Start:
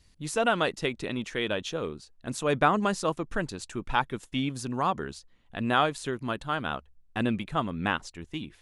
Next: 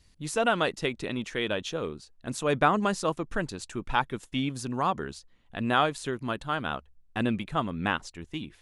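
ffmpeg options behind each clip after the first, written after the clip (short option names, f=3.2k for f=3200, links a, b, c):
-af anull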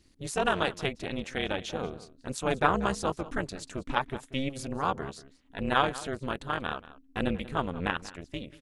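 -filter_complex "[0:a]tremolo=f=270:d=0.947,asplit=2[a][b];[b]adelay=186.6,volume=-17dB,highshelf=f=4k:g=-4.2[c];[a][c]amix=inputs=2:normalize=0,volume=2dB"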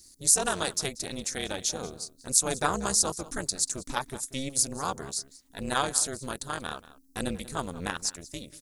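-af "aexciter=amount=8.3:drive=7.7:freq=4.4k,volume=-3dB"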